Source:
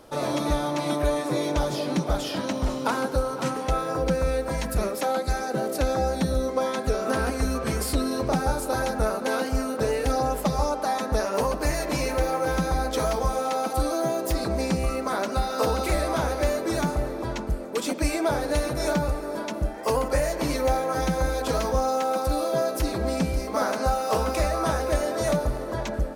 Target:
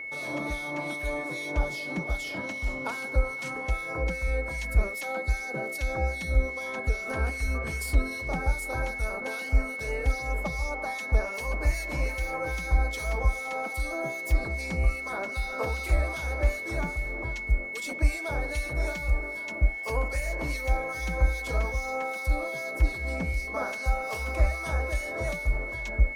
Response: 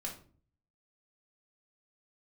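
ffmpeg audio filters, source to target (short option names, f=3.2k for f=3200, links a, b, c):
-filter_complex "[0:a]asubboost=boost=5:cutoff=80,aeval=exprs='val(0)+0.0562*sin(2*PI*2200*n/s)':c=same,acrossover=split=2000[a][b];[a]aeval=exprs='val(0)*(1-0.7/2+0.7/2*cos(2*PI*2.5*n/s))':c=same[c];[b]aeval=exprs='val(0)*(1-0.7/2-0.7/2*cos(2*PI*2.5*n/s))':c=same[d];[c][d]amix=inputs=2:normalize=0,volume=-5.5dB"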